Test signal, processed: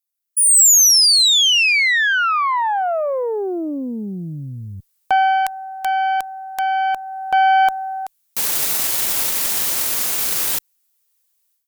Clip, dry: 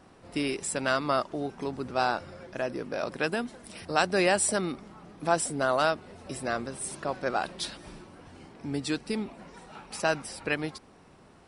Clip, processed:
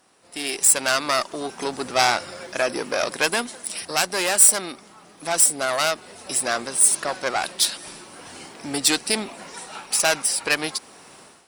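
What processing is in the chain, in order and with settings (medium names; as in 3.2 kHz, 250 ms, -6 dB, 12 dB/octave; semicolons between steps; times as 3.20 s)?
valve stage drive 23 dB, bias 0.6; RIAA curve recording; level rider gain up to 16 dB; trim -1 dB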